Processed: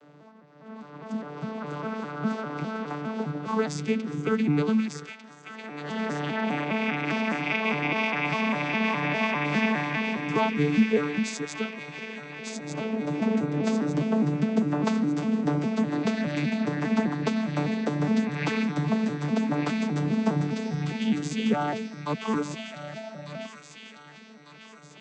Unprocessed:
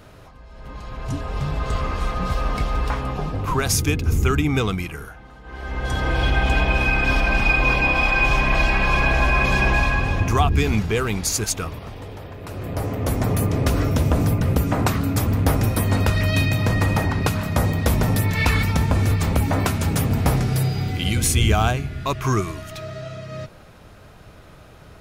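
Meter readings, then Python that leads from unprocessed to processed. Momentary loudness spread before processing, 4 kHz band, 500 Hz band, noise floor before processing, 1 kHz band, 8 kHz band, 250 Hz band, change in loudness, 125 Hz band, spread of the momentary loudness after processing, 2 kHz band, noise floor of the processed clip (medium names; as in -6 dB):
15 LU, -8.5 dB, -3.5 dB, -45 dBFS, -6.5 dB, -16.0 dB, +0.5 dB, -6.5 dB, -12.0 dB, 13 LU, -8.0 dB, -49 dBFS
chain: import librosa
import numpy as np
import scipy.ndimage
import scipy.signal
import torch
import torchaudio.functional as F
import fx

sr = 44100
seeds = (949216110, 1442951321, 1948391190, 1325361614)

p1 = fx.vocoder_arp(x, sr, chord='bare fifth', root=50, every_ms=203)
p2 = scipy.signal.sosfilt(scipy.signal.butter(4, 180.0, 'highpass', fs=sr, output='sos'), p1)
p3 = p2 + fx.echo_wet_highpass(p2, sr, ms=1198, feedback_pct=49, hz=2100.0, wet_db=-4, dry=0)
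y = p3 * 10.0 ** (-1.5 / 20.0)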